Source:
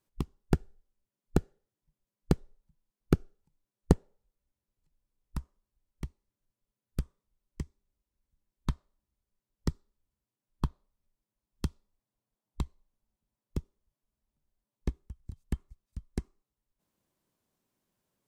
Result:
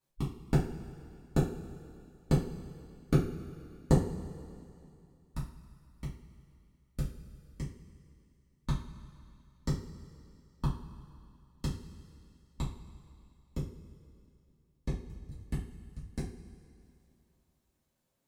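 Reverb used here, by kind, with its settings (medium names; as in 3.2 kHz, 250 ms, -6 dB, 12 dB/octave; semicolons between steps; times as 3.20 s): two-slope reverb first 0.34 s, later 2.6 s, from -18 dB, DRR -8.5 dB; trim -8 dB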